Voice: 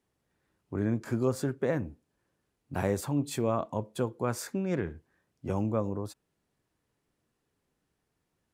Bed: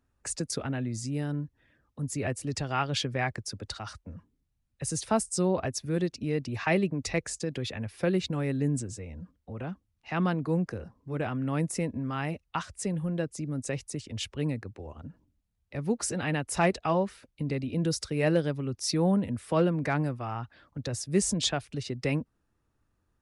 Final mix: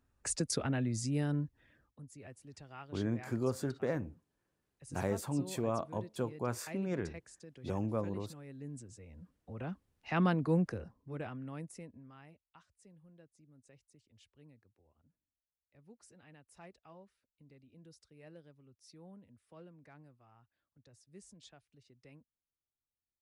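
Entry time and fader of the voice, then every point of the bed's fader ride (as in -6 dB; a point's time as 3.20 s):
2.20 s, -5.5 dB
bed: 1.83 s -1.5 dB
2.06 s -20.5 dB
8.45 s -20.5 dB
9.85 s -2 dB
10.63 s -2 dB
12.59 s -29.5 dB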